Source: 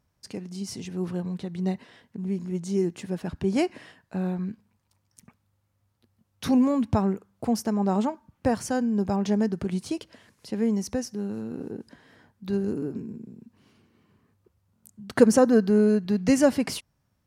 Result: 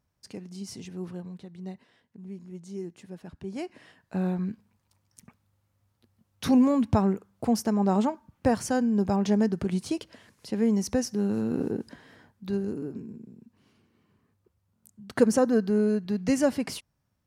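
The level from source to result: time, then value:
0:00.83 −4.5 dB
0:01.56 −11.5 dB
0:03.59 −11.5 dB
0:04.16 +0.5 dB
0:10.66 +0.5 dB
0:11.60 +7 dB
0:12.73 −4 dB

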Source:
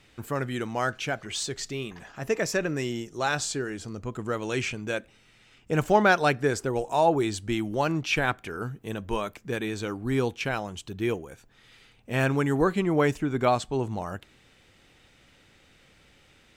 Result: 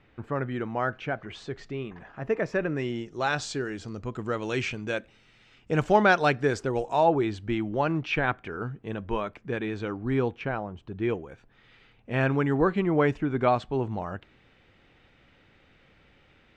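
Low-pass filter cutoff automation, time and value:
0:02.48 1,900 Hz
0:03.51 5,100 Hz
0:06.83 5,100 Hz
0:07.28 2,600 Hz
0:10.13 2,600 Hz
0:10.76 1,100 Hz
0:11.13 2,800 Hz

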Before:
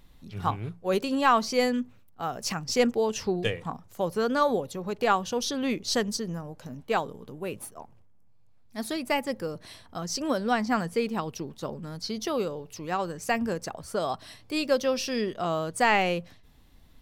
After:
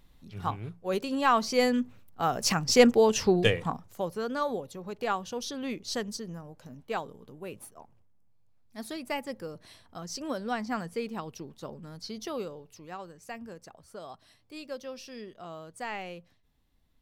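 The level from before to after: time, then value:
0:01.05 −4 dB
0:02.29 +4.5 dB
0:03.60 +4.5 dB
0:04.18 −6.5 dB
0:12.38 −6.5 dB
0:13.20 −14.5 dB

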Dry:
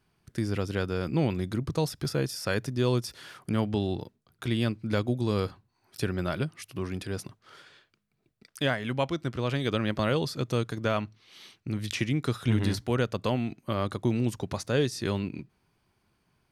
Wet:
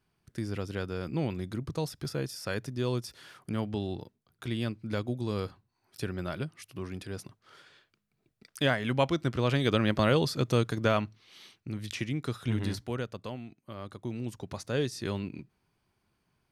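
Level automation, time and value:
0:07.24 −5 dB
0:09.05 +2 dB
0:10.85 +2 dB
0:11.74 −5 dB
0:12.76 −5 dB
0:13.57 −14.5 dB
0:14.79 −4 dB

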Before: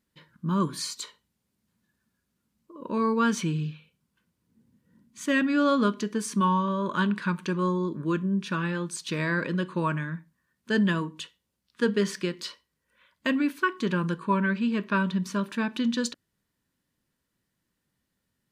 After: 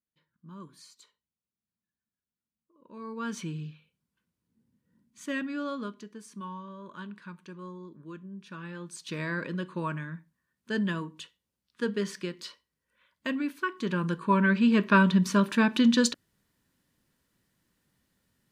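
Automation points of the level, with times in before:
0:02.87 −20 dB
0:03.37 −8 dB
0:05.31 −8 dB
0:06.20 −16.5 dB
0:08.35 −16.5 dB
0:09.13 −5.5 dB
0:13.65 −5.5 dB
0:14.75 +5 dB

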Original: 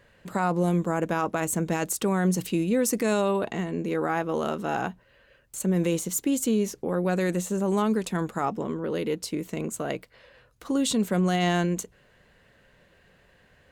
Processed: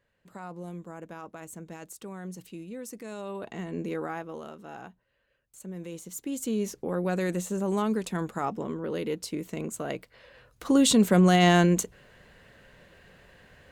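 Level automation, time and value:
0:03.11 −16 dB
0:03.81 −3 dB
0:04.52 −15 dB
0:05.87 −15 dB
0:06.68 −3 dB
0:09.91 −3 dB
0:10.73 +4.5 dB

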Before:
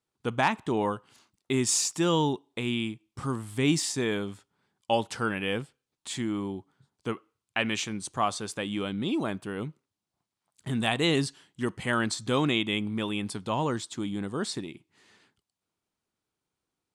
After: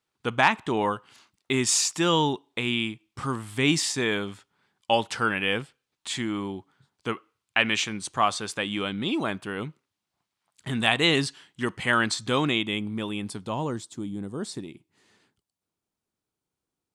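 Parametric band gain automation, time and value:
parametric band 2,200 Hz 2.9 octaves
0:12.15 +7 dB
0:12.88 −1.5 dB
0:13.42 −1.5 dB
0:14.15 −12 dB
0:14.68 −4 dB

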